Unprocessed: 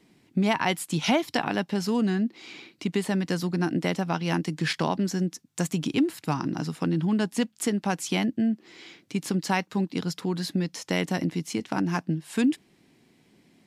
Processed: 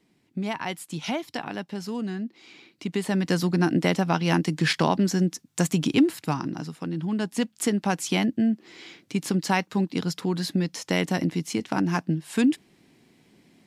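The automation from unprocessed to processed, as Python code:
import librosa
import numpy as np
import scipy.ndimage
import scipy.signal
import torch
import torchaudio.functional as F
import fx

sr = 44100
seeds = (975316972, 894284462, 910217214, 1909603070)

y = fx.gain(x, sr, db=fx.line((2.58, -6.0), (3.34, 4.0), (6.07, 4.0), (6.8, -6.0), (7.59, 2.0)))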